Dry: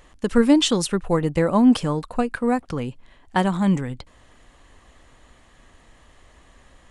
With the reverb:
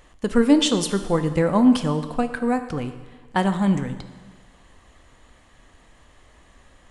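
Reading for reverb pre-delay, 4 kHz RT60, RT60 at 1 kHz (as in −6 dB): 6 ms, 1.3 s, 1.4 s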